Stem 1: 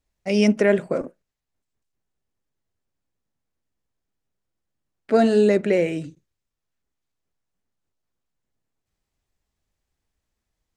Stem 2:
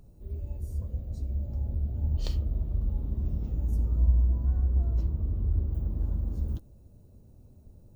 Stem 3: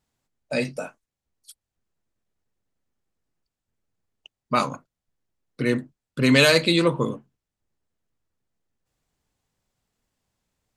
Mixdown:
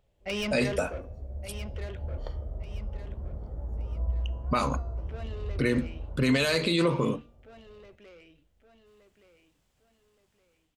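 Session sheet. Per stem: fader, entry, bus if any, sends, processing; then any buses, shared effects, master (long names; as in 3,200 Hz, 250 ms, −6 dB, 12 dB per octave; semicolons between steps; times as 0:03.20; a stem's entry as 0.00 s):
−2.5 dB, 0.00 s, no bus, no send, echo send −15 dB, low-pass with resonance 3,100 Hz, resonance Q 3.8; low-shelf EQ 200 Hz −10.5 dB; soft clipping −21 dBFS, distortion −9 dB; automatic ducking −17 dB, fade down 1.90 s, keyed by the third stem
−9.0 dB, 0.00 s, bus A, no send, echo send −14 dB, Savitzky-Golay smoothing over 41 samples; low shelf with overshoot 390 Hz −10 dB, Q 1.5
−8.5 dB, 0.00 s, bus A, no send, no echo send, no processing
bus A: 0.0 dB, automatic gain control gain up to 12 dB; brickwall limiter −12 dBFS, peak gain reduction 9.5 dB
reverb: not used
echo: repeating echo 1,170 ms, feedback 34%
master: hum removal 236.3 Hz, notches 28; brickwall limiter −15.5 dBFS, peak gain reduction 4.5 dB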